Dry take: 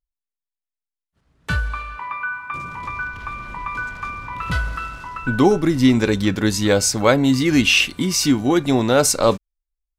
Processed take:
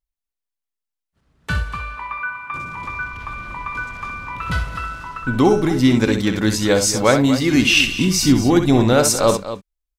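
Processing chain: 7.72–8.93 s: bass shelf 130 Hz +11.5 dB; loudspeakers at several distances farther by 22 m -8 dB, 82 m -12 dB

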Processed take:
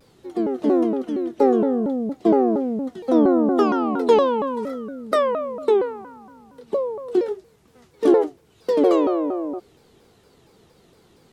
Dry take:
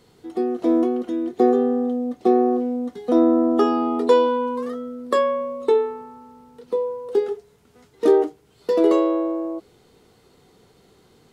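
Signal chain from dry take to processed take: vibrato with a chosen wave saw down 4.3 Hz, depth 250 cents

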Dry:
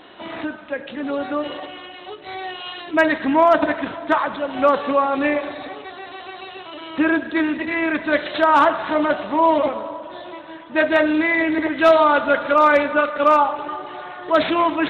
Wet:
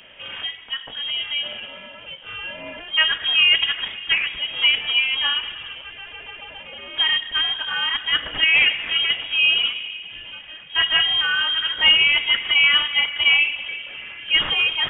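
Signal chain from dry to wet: frequency inversion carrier 3.5 kHz; trim -2 dB

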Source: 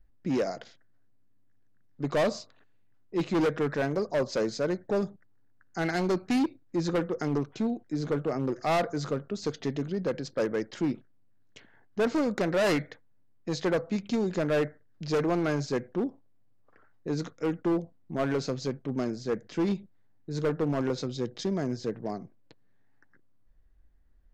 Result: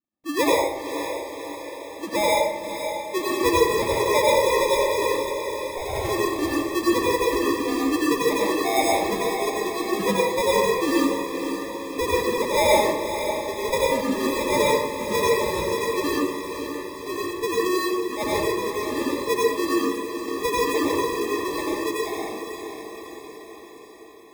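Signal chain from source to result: formants replaced by sine waves; sample-and-hold 30×; echo that smears into a reverb 532 ms, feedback 59%, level -8 dB; plate-style reverb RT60 0.92 s, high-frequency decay 0.65×, pre-delay 75 ms, DRR -5 dB

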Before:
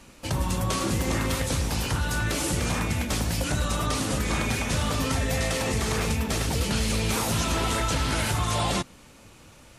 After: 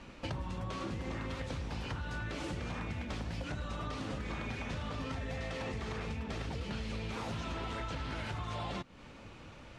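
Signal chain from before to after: low-pass 3.5 kHz 12 dB/octave; compression 8:1, threshold -36 dBFS, peak gain reduction 14.5 dB

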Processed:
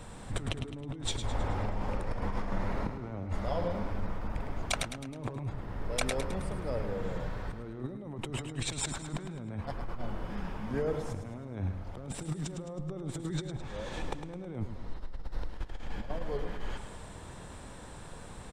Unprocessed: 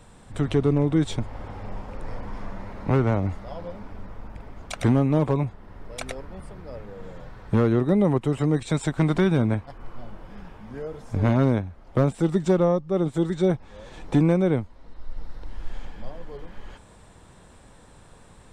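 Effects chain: compressor with a negative ratio -33 dBFS, ratio -1; feedback delay 106 ms, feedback 50%, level -9 dB; trim -3 dB

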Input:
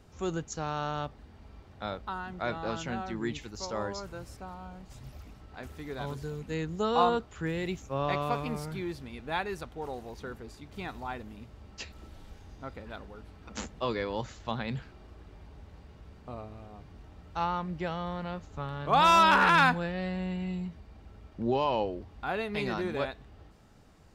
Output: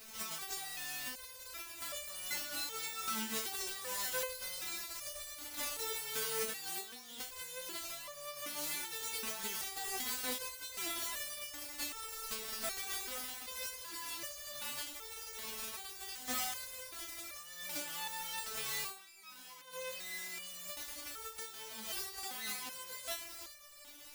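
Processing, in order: formants flattened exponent 0.1; compressor with a negative ratio -40 dBFS, ratio -1; resonator arpeggio 2.6 Hz 220–590 Hz; trim +11.5 dB

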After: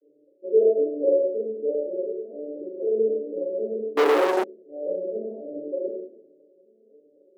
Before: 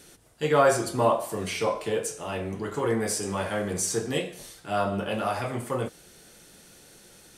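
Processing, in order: vocoder on a broken chord major triad, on D3, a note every 255 ms; steep low-pass 560 Hz 72 dB/octave; simulated room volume 140 m³, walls mixed, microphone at 2.2 m; 3.97–4.44 s: waveshaping leveller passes 5; inverse Chebyshev high-pass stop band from 180 Hz, stop band 40 dB

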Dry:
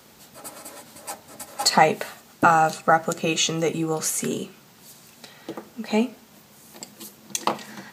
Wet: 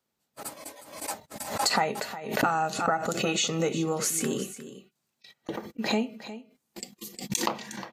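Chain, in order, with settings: compression 3:1, threshold -25 dBFS, peak gain reduction 11.5 dB; gate -40 dBFS, range -54 dB; spectral noise reduction 16 dB; on a send: delay 359 ms -14 dB; on the sum: swell ahead of each attack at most 81 dB/s

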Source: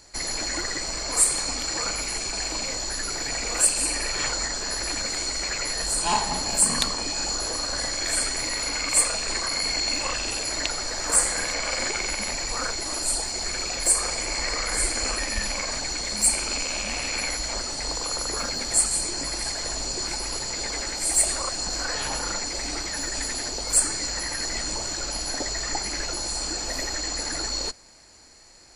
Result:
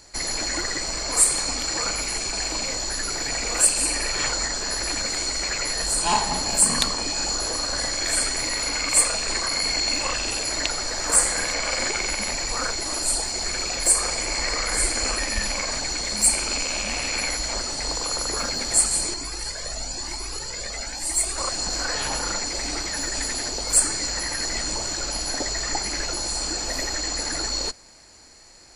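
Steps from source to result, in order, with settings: 19.14–21.38 s: Shepard-style flanger rising 1 Hz; trim +2 dB

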